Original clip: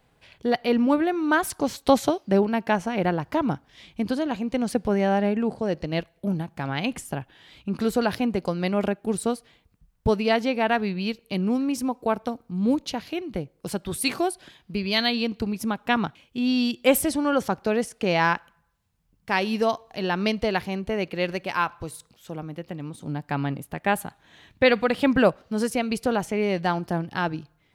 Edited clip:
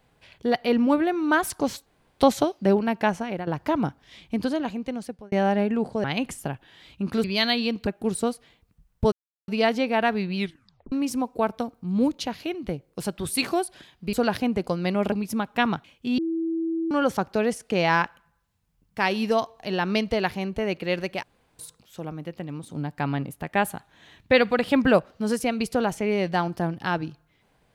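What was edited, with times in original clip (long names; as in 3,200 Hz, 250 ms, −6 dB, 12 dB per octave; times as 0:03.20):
0:01.86: splice in room tone 0.34 s
0:02.78–0:03.13: fade out, to −13.5 dB
0:04.21–0:04.98: fade out
0:05.70–0:06.71: remove
0:07.91–0:08.90: swap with 0:14.80–0:15.43
0:10.15: splice in silence 0.36 s
0:11.03: tape stop 0.56 s
0:16.49–0:17.22: beep over 328 Hz −23.5 dBFS
0:21.54–0:21.90: fill with room tone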